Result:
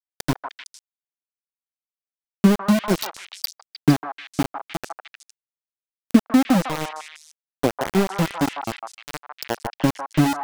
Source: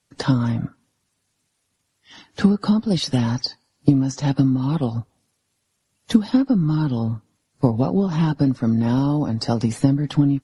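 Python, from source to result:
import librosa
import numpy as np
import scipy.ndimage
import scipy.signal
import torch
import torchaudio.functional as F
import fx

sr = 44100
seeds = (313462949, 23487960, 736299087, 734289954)

y = fx.noise_reduce_blind(x, sr, reduce_db=28)
y = np.where(np.abs(y) >= 10.0 ** (-18.0 / 20.0), y, 0.0)
y = fx.echo_stepped(y, sr, ms=153, hz=990.0, octaves=1.4, feedback_pct=70, wet_db=-0.5)
y = y * librosa.db_to_amplitude(1.5)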